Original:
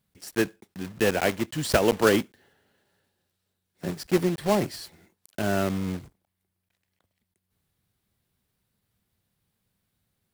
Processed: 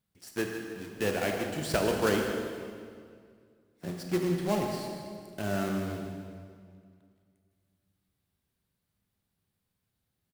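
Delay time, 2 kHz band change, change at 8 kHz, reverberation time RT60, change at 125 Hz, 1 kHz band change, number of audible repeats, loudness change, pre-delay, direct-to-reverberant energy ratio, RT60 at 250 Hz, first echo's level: 156 ms, −5.5 dB, −5.5 dB, 2.1 s, −4.0 dB, −5.0 dB, 2, −6.0 dB, 19 ms, 1.5 dB, 2.4 s, −11.5 dB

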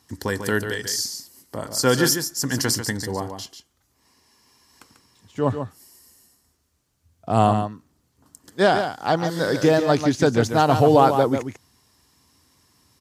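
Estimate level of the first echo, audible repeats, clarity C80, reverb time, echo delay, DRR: −8.0 dB, 1, no reverb audible, no reverb audible, 143 ms, no reverb audible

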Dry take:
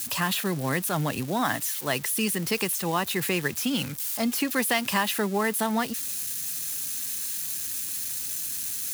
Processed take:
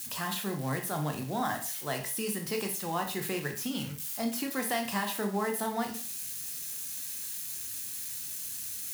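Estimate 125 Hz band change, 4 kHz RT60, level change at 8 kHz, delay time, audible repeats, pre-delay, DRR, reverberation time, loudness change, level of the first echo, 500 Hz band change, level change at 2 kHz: −5.0 dB, 0.40 s, −6.5 dB, no echo audible, no echo audible, 7 ms, 3.0 dB, 0.40 s, −6.5 dB, no echo audible, −5.0 dB, −8.5 dB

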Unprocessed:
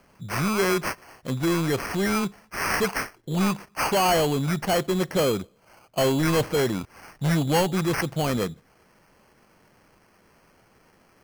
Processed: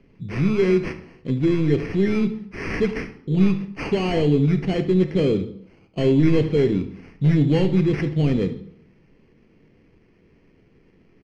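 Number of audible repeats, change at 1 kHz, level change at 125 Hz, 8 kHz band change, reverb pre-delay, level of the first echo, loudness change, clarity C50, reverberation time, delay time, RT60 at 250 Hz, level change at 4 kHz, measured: 1, −10.0 dB, +6.5 dB, below −15 dB, 3 ms, −15.5 dB, +3.5 dB, 11.5 dB, 0.70 s, 73 ms, 0.70 s, −5.5 dB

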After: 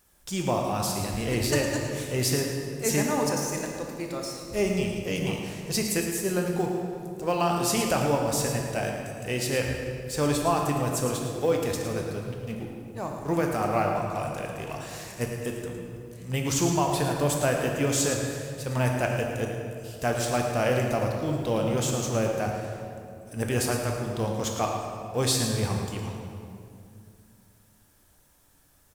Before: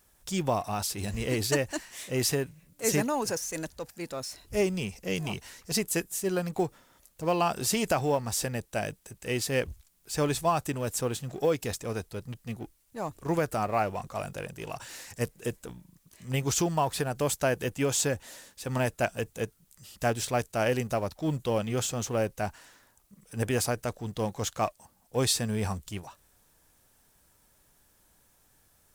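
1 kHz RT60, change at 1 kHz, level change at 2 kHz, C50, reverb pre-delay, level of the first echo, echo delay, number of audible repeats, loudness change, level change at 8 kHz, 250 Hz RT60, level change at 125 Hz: 2.2 s, +2.5 dB, +2.5 dB, 2.0 dB, 13 ms, −9.5 dB, 110 ms, 1, +2.5 dB, +2.0 dB, 3.1 s, +4.0 dB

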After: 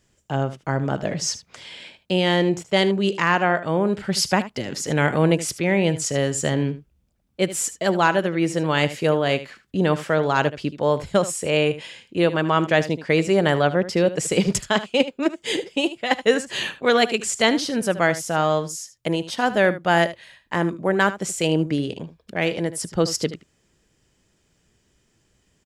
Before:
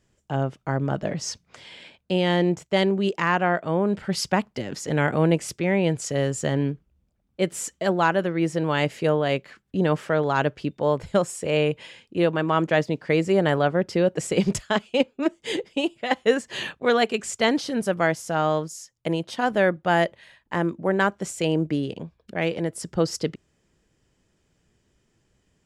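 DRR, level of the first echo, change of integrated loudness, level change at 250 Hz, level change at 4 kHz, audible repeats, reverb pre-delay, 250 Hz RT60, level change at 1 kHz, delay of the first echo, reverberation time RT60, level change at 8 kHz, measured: no reverb audible, −14.5 dB, +2.5 dB, +1.5 dB, +5.5 dB, 1, no reverb audible, no reverb audible, +2.5 dB, 76 ms, no reverb audible, +6.5 dB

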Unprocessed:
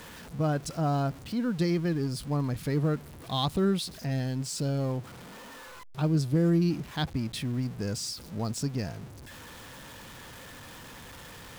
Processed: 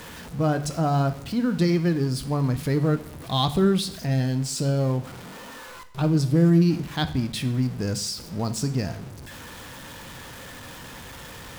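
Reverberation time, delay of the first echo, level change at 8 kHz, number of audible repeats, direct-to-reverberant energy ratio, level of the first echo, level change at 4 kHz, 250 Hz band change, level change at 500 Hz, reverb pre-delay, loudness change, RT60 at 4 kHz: 0.70 s, no echo audible, +5.5 dB, no echo audible, 10.0 dB, no echo audible, +5.5 dB, +5.5 dB, +5.5 dB, 14 ms, +5.5 dB, 0.65 s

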